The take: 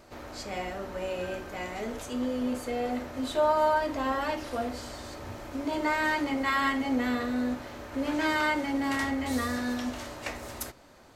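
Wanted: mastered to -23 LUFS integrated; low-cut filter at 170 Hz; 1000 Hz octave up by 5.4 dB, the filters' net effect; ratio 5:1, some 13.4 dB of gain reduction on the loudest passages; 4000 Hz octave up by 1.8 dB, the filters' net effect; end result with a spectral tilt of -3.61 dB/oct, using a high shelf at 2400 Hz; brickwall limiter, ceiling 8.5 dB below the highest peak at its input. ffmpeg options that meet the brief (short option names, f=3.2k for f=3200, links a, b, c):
-af "highpass=170,equalizer=f=1k:t=o:g=6.5,highshelf=f=2.4k:g=-3.5,equalizer=f=4k:t=o:g=5,acompressor=threshold=-32dB:ratio=5,volume=15dB,alimiter=limit=-15dB:level=0:latency=1"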